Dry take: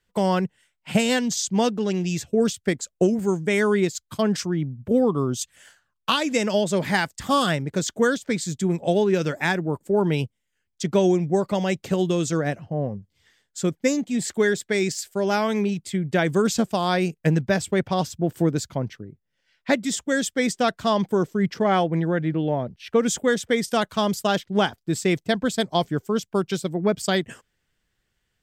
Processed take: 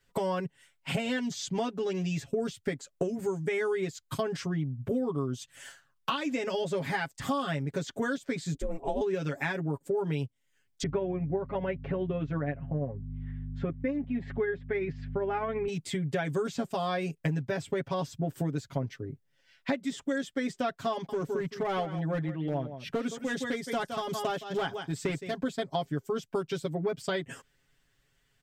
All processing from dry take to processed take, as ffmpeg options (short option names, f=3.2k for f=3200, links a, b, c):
-filter_complex "[0:a]asettb=1/sr,asplit=3[a][b][c];[a]atrim=end=8.544[d];[b]atrim=start=8.54:end=9.01,asetpts=PTS-STARTPTS,afade=t=in:d=0.004:c=qsin,afade=t=out:st=0.466:d=0.004:c=qsin,equalizer=f=4.8k:w=0.49:g=-9.5,aeval=exprs='val(0)*sin(2*PI*160*n/s)':c=same[e];[c]atrim=start=9.006[f];[d][e]acrossfade=d=0.004:c1=hsin:c2=qsin[g];[g][f]acrossfade=d=0.004:c1=qsin:c2=hsin,asettb=1/sr,asplit=3[h][i][j];[h]atrim=end=10.834[k];[i]atrim=start=10.83:end=15.68,asetpts=PTS-STARTPTS,afade=t=in:d=0.004:c=qsin,afade=t=out:st=4.846:d=0.004:c=qsin,lowpass=f=2.3k:w=0.5412,lowpass=f=2.3k:w=1.3066,tremolo=f=15:d=0.35,aeval=exprs='val(0)+0.0158*(sin(2*PI*50*n/s)+sin(2*PI*2*50*n/s)/2+sin(2*PI*3*50*n/s)/3+sin(2*PI*4*50*n/s)/4+sin(2*PI*5*50*n/s)/5)':c=same[l];[j]atrim=start=15.676[m];[k][l]acrossfade=d=0.004:c1=hsin:c2=qsin[n];[n][m]acrossfade=d=0.004:c1=qsin:c2=hsin,asettb=1/sr,asplit=3[o][p][q];[o]atrim=end=20.924[r];[p]atrim=start=20.92:end=25.43,asetpts=PTS-STARTPTS,afade=t=in:d=0.004:c=qsin,afade=t=out:st=4.506:d=0.004:c=qsin,aecho=1:1:166:0.299,atrim=end_sample=198891,asoftclip=type=hard:threshold=-15dB,tremolo=f=2.4:d=0.59[s];[q]atrim=start=25.426[t];[r][s]acrossfade=d=0.004:c1=hsin:c2=qsin[u];[u][t]acrossfade=d=0.004:c1=qsin:c2=hsin,acrossover=split=3500[v][w];[w]acompressor=threshold=-41dB:ratio=4:attack=1:release=60[x];[v][x]amix=inputs=2:normalize=0,aecho=1:1:7.3:0.98,acompressor=threshold=-30dB:ratio=4"